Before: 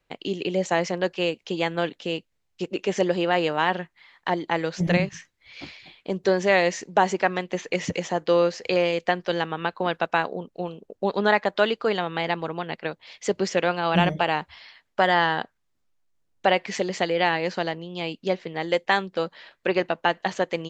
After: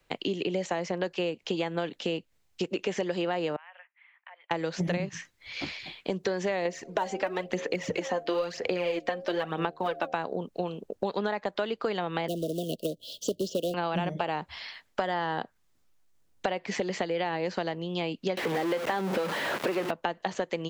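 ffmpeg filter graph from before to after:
-filter_complex "[0:a]asettb=1/sr,asplit=3[a][b][c];[a]atrim=end=3.564[d];[b]atrim=start=3.56:end=4.51,asetpts=PTS-STARTPTS,afade=t=in:d=0.004:c=qsin,afade=t=out:st=0.946:d=0.004:c=qsin,aderivative,acompressor=threshold=-48dB:ratio=6:attack=3.2:release=140:knee=1:detection=peak,asuperpass=centerf=1200:order=12:qfactor=0.56[e];[c]atrim=start=4.506[f];[d][e]acrossfade=d=0.004:c1=hsin:c2=qsin[g];[g][f]acrossfade=d=0.004:c1=qsin:c2=hsin,asettb=1/sr,asplit=3[h][i][j];[h]atrim=end=6.654[k];[i]atrim=start=6.65:end=10.13,asetpts=PTS-STARTPTS,afade=t=in:d=0.004:c=qsin,afade=t=out:st=3.476:d=0.004:c=qsin,bass=f=250:g=-4,treble=f=4k:g=-3,bandreject=f=77.16:t=h:w=4,bandreject=f=154.32:t=h:w=4,bandreject=f=231.48:t=h:w=4,bandreject=f=308.64:t=h:w=4,bandreject=f=385.8:t=h:w=4,bandreject=f=462.96:t=h:w=4,bandreject=f=540.12:t=h:w=4,bandreject=f=617.28:t=h:w=4,bandreject=f=694.44:t=h:w=4,bandreject=f=771.6:t=h:w=4,aphaser=in_gain=1:out_gain=1:delay=3.9:decay=0.57:speed=1:type=sinusoidal[l];[j]atrim=start=10.126[m];[k][l]acrossfade=d=0.004:c1=hsin:c2=qsin[n];[n][m]acrossfade=d=0.004:c1=qsin:c2=hsin,asettb=1/sr,asplit=3[o][p][q];[o]atrim=end=12.284[r];[p]atrim=start=12.28:end=13.74,asetpts=PTS-STARTPTS,afade=t=in:d=0.004:c=qsin,afade=t=out:st=1.456:d=0.004:c=qsin,equalizer=f=290:w=4.5:g=4.5,acrusher=bits=3:mode=log:mix=0:aa=0.000001,asuperstop=centerf=1400:order=20:qfactor=0.61[s];[q]atrim=start=13.736[t];[r][s]acrossfade=d=0.004:c1=hsin:c2=qsin[u];[u][t]acrossfade=d=0.004:c1=qsin:c2=hsin,asettb=1/sr,asplit=3[v][w][x];[v]atrim=end=18.374[y];[w]atrim=start=18.37:end=19.91,asetpts=PTS-STARTPTS,afade=t=in:d=0.004:c=qsin,afade=t=out:st=1.536:d=0.004:c=qsin,aeval=exprs='val(0)+0.5*0.1*sgn(val(0))':c=same,highpass=190,acrossover=split=4000[z][aa];[aa]acompressor=threshold=-40dB:ratio=4:attack=1:release=60[ab];[z][ab]amix=inputs=2:normalize=0[ac];[x]atrim=start=19.906[ad];[y][ac]acrossfade=d=0.004:c1=hsin:c2=qsin[ae];[ae][ad]acrossfade=d=0.004:c1=qsin:c2=hsin,acrossover=split=120|1100|3300[af][ag][ah][ai];[af]acompressor=threshold=-54dB:ratio=4[aj];[ag]acompressor=threshold=-25dB:ratio=4[ak];[ah]acompressor=threshold=-38dB:ratio=4[al];[ai]acompressor=threshold=-48dB:ratio=4[am];[aj][ak][al][am]amix=inputs=4:normalize=0,highshelf=f=5.9k:g=4.5,acompressor=threshold=-34dB:ratio=2.5,volume=5dB"

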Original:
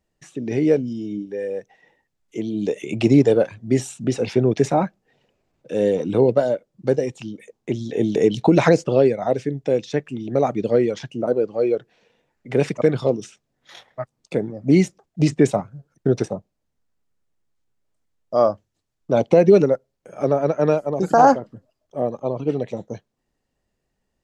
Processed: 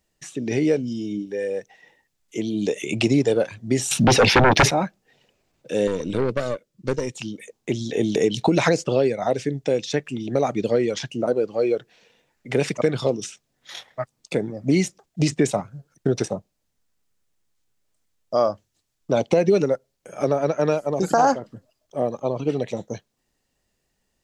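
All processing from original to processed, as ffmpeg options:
-filter_complex "[0:a]asettb=1/sr,asplit=3[a][b][c];[a]atrim=end=3.914[d];[b]atrim=start=3.91:end=4.71,asetpts=PTS-STARTPTS,afade=t=in:d=0.004:c=qsin,afade=t=out:st=0.796:d=0.004:c=qsin,equalizer=f=7.7k:t=o:w=0.5:g=-15,aeval=exprs='0.596*sin(PI/2*5.01*val(0)/0.596)':c=same[e];[c]atrim=start=4.706[f];[d][e]acrossfade=d=0.004:c1=hsin:c2=qsin[g];[g][f]acrossfade=d=0.004:c1=qsin:c2=hsin,asettb=1/sr,asplit=3[h][i][j];[h]atrim=end=5.874[k];[i]atrim=start=5.87:end=7.15,asetpts=PTS-STARTPTS,afade=t=in:d=0.004:c=qsin,afade=t=out:st=1.276:d=0.004:c=qsin,aeval=exprs='(tanh(5.01*val(0)+0.6)-tanh(0.6))/5.01':c=same,equalizer=f=750:w=2.7:g=-9.5[l];[j]atrim=start=7.146[m];[k][l]acrossfade=d=0.004:c1=hsin:c2=qsin[n];[n][m]acrossfade=d=0.004:c1=qsin:c2=hsin,highshelf=f=2.1k:g=9.5,acompressor=threshold=-18dB:ratio=2"

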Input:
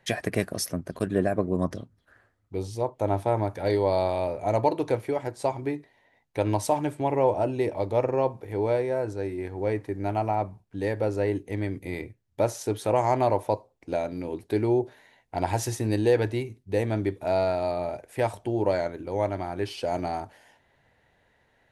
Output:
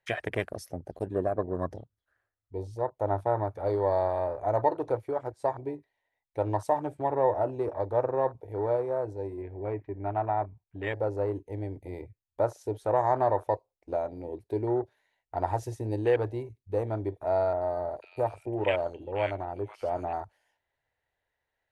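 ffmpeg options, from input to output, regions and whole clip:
-filter_complex "[0:a]asettb=1/sr,asplit=3[a][b][c];[a]atrim=end=9.424[d];[b]atrim=start=9.42:end=10.93,asetpts=PTS-STARTPTS,afade=t=in:d=0.004:c=qsin,afade=t=out:st=1.506:d=0.004:c=qsin,lowpass=f=2.4k:t=q:w=1.9,equalizer=f=1.5k:w=0.89:g=-2.5,bandreject=f=500:w=5.8[e];[c]atrim=start=10.926[f];[d][e]acrossfade=d=0.004:c1=hsin:c2=qsin[g];[g][f]acrossfade=d=0.004:c1=qsin:c2=hsin,asettb=1/sr,asplit=3[h][i][j];[h]atrim=end=17.534[k];[i]atrim=start=17.53:end=20.13,asetpts=PTS-STARTPTS,afade=t=in:d=0.004:c=qsin,afade=t=out:st=2.596:d=0.004:c=qsin,equalizer=f=2.7k:t=o:w=0.51:g=15,acrossover=split=1300|4700[l][m][n];[n]adelay=80[o];[m]adelay=490[p];[l][p][o]amix=inputs=3:normalize=0,atrim=end_sample=114660[q];[j]atrim=start=20.126[r];[k][q]acrossfade=d=0.004:c1=hsin:c2=qsin[s];[s][r]acrossfade=d=0.004:c1=qsin:c2=hsin,afwtdn=0.02,equalizer=f=200:w=0.98:g=-12"

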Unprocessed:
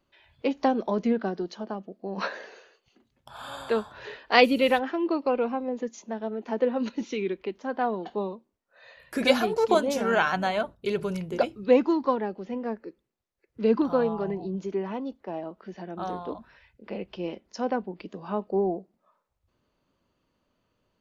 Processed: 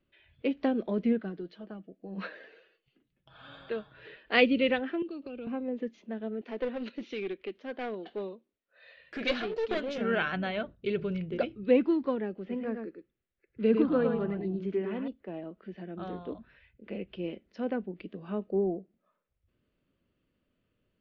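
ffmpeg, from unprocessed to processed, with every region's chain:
-filter_complex "[0:a]asettb=1/sr,asplit=3[a][b][c];[a]atrim=end=1.194[d];[b]atrim=start=1.19:end=4.26,asetpts=PTS-STARTPTS,afade=t=in:d=0.004:c=qsin,afade=t=out:st=3.066:d=0.004:c=qsin,aecho=1:1:6.3:0.35,atrim=end_sample=135387,flanger=delay=5:depth=2.7:regen=53:speed=2:shape=triangular[e];[c]atrim=start=4.256[f];[d][e]acrossfade=d=0.004:c1=hsin:c2=qsin[g];[g][f]acrossfade=d=0.004:c1=qsin:c2=hsin,asettb=1/sr,asplit=3[h][i][j];[h]atrim=end=5.024[k];[i]atrim=start=5.02:end=5.47,asetpts=PTS-STARTPTS,afade=t=in:d=0.004:c=qsin,afade=t=out:st=0.446:d=0.004:c=qsin,bandreject=f=1k:w=9.8,acrossover=split=180|3000[l][m][n];[m]acompressor=threshold=-35dB:ratio=10:attack=3.2:release=140:knee=2.83:detection=peak[o];[l][o][n]amix=inputs=3:normalize=0,equalizer=f=2k:w=5.9:g=-10.5[p];[j]atrim=start=5.466[q];[k][p]acrossfade=d=0.004:c1=hsin:c2=qsin[r];[r][q]acrossfade=d=0.004:c1=qsin:c2=hsin,asettb=1/sr,asplit=3[s][t][u];[s]atrim=end=6.414[v];[t]atrim=start=6.41:end=9.98,asetpts=PTS-STARTPTS,afade=t=in:d=0.004:c=qsin,afade=t=out:st=3.566:d=0.004:c=qsin,aeval=exprs='clip(val(0),-1,0.0376)':c=same,bass=f=250:g=-11,treble=f=4k:g=8[w];[u]atrim=start=9.976[x];[v][w]acrossfade=d=0.004:c1=hsin:c2=qsin[y];[y][x]acrossfade=d=0.004:c1=qsin:c2=hsin,asettb=1/sr,asplit=3[z][aa][ab];[z]atrim=end=12.374[ac];[aa]atrim=start=12.37:end=15.08,asetpts=PTS-STARTPTS,afade=t=in:d=0.004:c=qsin,afade=t=out:st=2.706:d=0.004:c=qsin,equalizer=f=1.4k:t=o:w=1.2:g=4,aecho=1:1:108:0.531,atrim=end_sample=119511[ad];[ab]atrim=start=15.076[ae];[ac][ad]acrossfade=d=0.004:c1=hsin:c2=qsin[af];[af][ae]acrossfade=d=0.004:c1=qsin:c2=hsin,lowpass=f=3.3k:w=0.5412,lowpass=f=3.3k:w=1.3066,equalizer=f=910:t=o:w=0.93:g=-14,volume=-1dB"

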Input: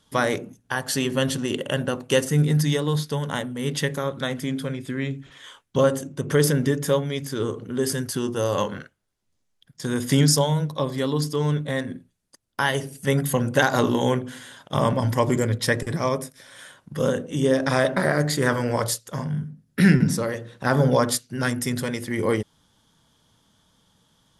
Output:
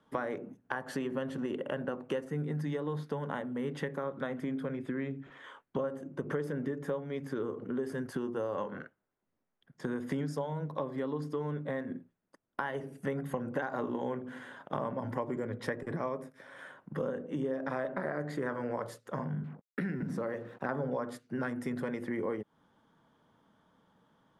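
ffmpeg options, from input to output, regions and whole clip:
-filter_complex "[0:a]asettb=1/sr,asplit=3[a][b][c];[a]atrim=end=19.444[d];[b]atrim=start=19.44:end=20.69,asetpts=PTS-STARTPTS,afade=t=in:d=0.004:c=qsin,afade=t=out:st=1.246:d=0.004:c=qsin,acompressor=threshold=-22dB:ratio=2.5:attack=3.2:release=140:knee=1:detection=peak,acrusher=bits=7:mix=0:aa=0.5[e];[c]atrim=start=20.686[f];[d][e]acrossfade=d=0.004:c1=hsin:c2=qsin[g];[g][f]acrossfade=d=0.004:c1=qsin:c2=hsin,acrossover=split=170 2000:gain=0.2 1 0.0794[h][i][j];[h][i][j]amix=inputs=3:normalize=0,acompressor=threshold=-32dB:ratio=6"

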